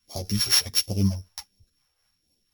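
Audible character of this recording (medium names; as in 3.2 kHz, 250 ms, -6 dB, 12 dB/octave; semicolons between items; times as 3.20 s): a buzz of ramps at a fixed pitch in blocks of 8 samples; phasing stages 2, 1.4 Hz, lowest notch 210–1300 Hz; tremolo triangle 4 Hz, depth 45%; a shimmering, thickened sound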